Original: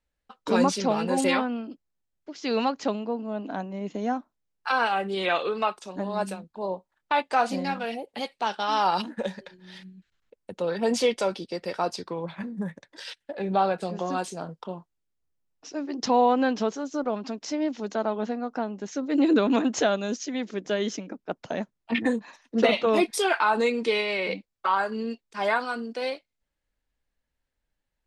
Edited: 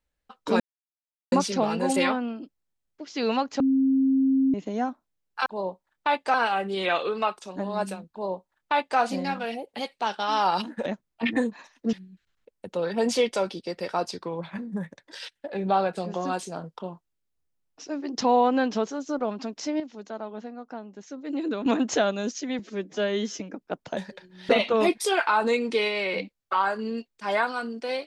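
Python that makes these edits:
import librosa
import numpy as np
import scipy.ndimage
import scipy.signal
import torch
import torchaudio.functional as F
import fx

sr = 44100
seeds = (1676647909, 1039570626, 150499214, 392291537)

y = fx.edit(x, sr, fx.insert_silence(at_s=0.6, length_s=0.72),
    fx.bleep(start_s=2.88, length_s=0.94, hz=267.0, db=-18.0),
    fx.duplicate(start_s=6.51, length_s=0.88, to_s=4.74),
    fx.swap(start_s=9.26, length_s=0.52, other_s=21.55, other_length_s=1.07),
    fx.clip_gain(start_s=17.65, length_s=1.86, db=-8.5),
    fx.stretch_span(start_s=20.44, length_s=0.54, factor=1.5), tone=tone)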